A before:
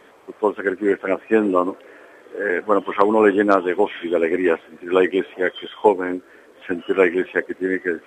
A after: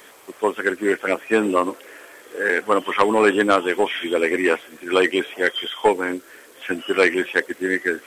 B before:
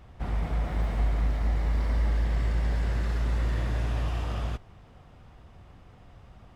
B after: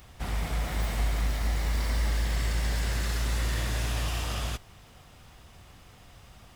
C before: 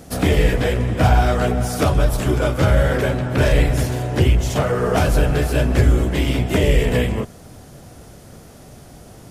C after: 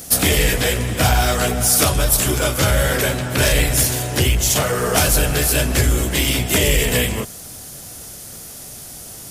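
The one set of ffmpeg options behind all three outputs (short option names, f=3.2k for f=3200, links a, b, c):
-af "asoftclip=type=tanh:threshold=-4.5dB,crystalizer=i=7:c=0,volume=-2dB"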